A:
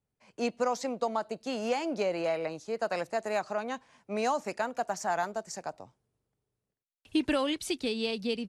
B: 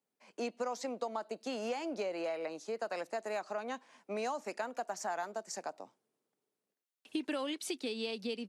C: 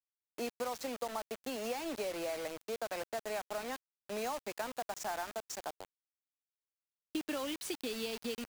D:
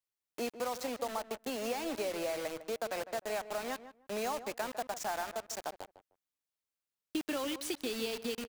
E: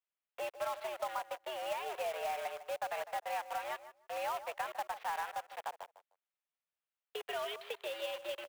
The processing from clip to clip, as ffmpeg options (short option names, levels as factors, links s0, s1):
-af "highpass=f=220:w=0.5412,highpass=f=220:w=1.3066,acompressor=threshold=0.0141:ratio=2.5"
-af "acrusher=bits=6:mix=0:aa=0.000001,volume=0.841"
-filter_complex "[0:a]asplit=2[s0][s1];[s1]adelay=153,lowpass=f=1500:p=1,volume=0.251,asplit=2[s2][s3];[s3]adelay=153,lowpass=f=1500:p=1,volume=0.18[s4];[s0][s2][s4]amix=inputs=3:normalize=0,volume=1.26"
-af "highpass=f=380:t=q:w=0.5412,highpass=f=380:t=q:w=1.307,lowpass=f=3300:t=q:w=0.5176,lowpass=f=3300:t=q:w=0.7071,lowpass=f=3300:t=q:w=1.932,afreqshift=110,acrusher=bits=3:mode=log:mix=0:aa=0.000001,volume=0.891"